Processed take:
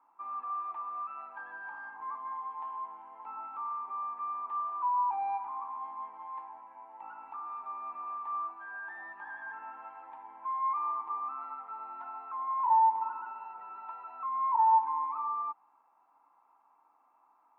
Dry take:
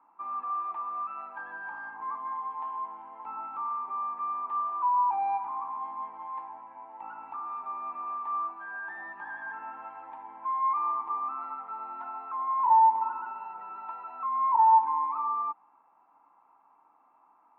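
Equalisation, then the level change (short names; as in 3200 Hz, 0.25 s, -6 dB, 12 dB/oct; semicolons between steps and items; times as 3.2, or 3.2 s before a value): low shelf 220 Hz -10 dB; -3.5 dB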